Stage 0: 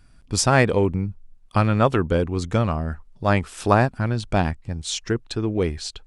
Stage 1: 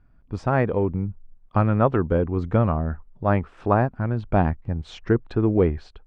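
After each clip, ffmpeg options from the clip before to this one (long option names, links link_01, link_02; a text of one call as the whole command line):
ffmpeg -i in.wav -af "dynaudnorm=framelen=160:gausssize=5:maxgain=10dB,lowpass=1400,volume=-4dB" out.wav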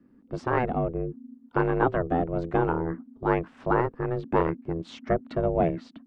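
ffmpeg -i in.wav -filter_complex "[0:a]aeval=exprs='val(0)*sin(2*PI*250*n/s)':channel_layout=same,acrossover=split=210|590|1300[link_01][link_02][link_03][link_04];[link_01]asoftclip=type=tanh:threshold=-29.5dB[link_05];[link_05][link_02][link_03][link_04]amix=inputs=4:normalize=0" out.wav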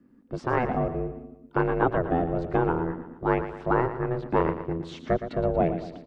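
ffmpeg -i in.wav -af "aecho=1:1:116|232|348|464|580:0.282|0.135|0.0649|0.0312|0.015" out.wav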